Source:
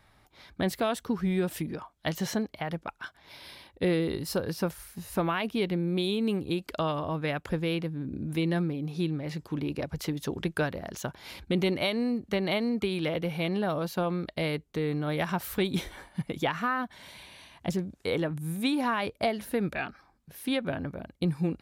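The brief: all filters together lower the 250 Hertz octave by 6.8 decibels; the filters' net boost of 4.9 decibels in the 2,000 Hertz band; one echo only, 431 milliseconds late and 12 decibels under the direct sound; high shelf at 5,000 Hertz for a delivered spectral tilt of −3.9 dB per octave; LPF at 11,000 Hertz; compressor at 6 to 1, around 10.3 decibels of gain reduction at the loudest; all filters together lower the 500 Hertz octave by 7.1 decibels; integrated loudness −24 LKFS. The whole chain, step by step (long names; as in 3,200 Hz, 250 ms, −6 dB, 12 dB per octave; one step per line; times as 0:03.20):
low-pass filter 11,000 Hz
parametric band 250 Hz −8.5 dB
parametric band 500 Hz −7 dB
parametric band 2,000 Hz +5.5 dB
high-shelf EQ 5,000 Hz +6 dB
downward compressor 6 to 1, threshold −35 dBFS
single-tap delay 431 ms −12 dB
level +15 dB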